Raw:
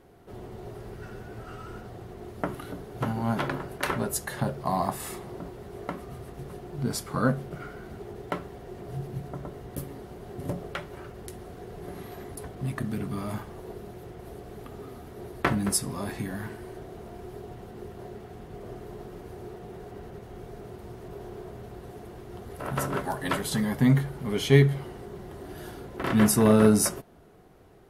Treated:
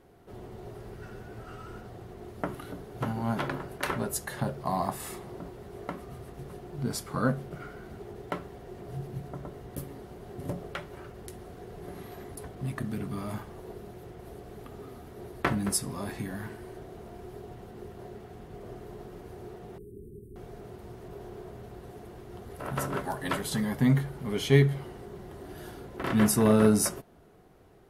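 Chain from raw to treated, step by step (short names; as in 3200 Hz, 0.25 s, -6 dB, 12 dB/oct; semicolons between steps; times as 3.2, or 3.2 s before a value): 19.78–20.36 Chebyshev band-stop 420–8600 Hz, order 5; gain -2.5 dB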